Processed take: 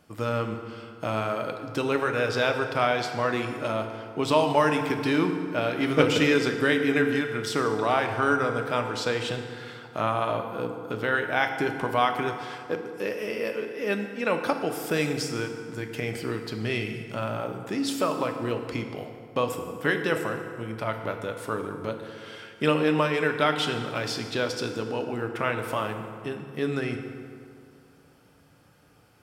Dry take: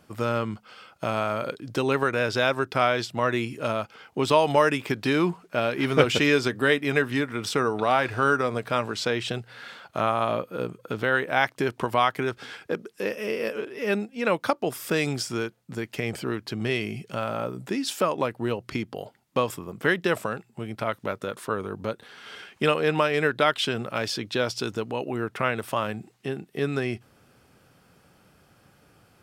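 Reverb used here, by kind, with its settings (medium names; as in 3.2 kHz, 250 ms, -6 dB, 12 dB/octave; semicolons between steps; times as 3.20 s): FDN reverb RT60 2.3 s, low-frequency decay 1×, high-frequency decay 0.6×, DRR 4.5 dB; trim -2.5 dB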